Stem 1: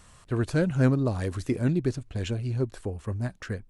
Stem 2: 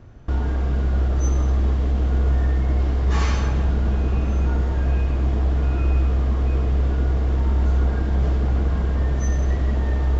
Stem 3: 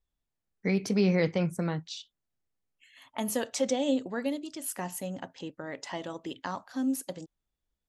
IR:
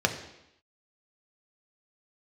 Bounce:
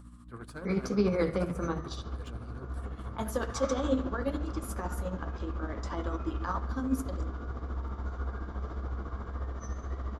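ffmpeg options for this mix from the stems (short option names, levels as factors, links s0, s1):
-filter_complex "[0:a]highshelf=f=4000:g=12,asoftclip=type=tanh:threshold=0.0794,equalizer=f=6300:t=o:w=0.77:g=-8.5,volume=0.266,asplit=3[s0][s1][s2];[s1]volume=0.0841[s3];[1:a]adelay=400,volume=0.237,asplit=2[s4][s5];[s5]volume=0.158[s6];[2:a]equalizer=f=330:t=o:w=0.28:g=7.5,aeval=exprs='val(0)+0.01*(sin(2*PI*60*n/s)+sin(2*PI*2*60*n/s)/2+sin(2*PI*3*60*n/s)/3+sin(2*PI*4*60*n/s)/4+sin(2*PI*5*60*n/s)/5)':c=same,volume=0.531,asplit=2[s7][s8];[s8]volume=0.398[s9];[s2]apad=whole_len=467208[s10];[s4][s10]sidechaincompress=threshold=0.00447:ratio=8:attack=16:release=338[s11];[3:a]atrim=start_sample=2205[s12];[s3][s6][s9]amix=inputs=3:normalize=0[s13];[s13][s12]afir=irnorm=-1:irlink=0[s14];[s0][s11][s7][s14]amix=inputs=4:normalize=0,equalizer=f=1200:t=o:w=0.61:g=12.5,flanger=delay=1.1:depth=9.7:regen=-59:speed=1.8:shape=triangular,tremolo=f=14:d=0.51"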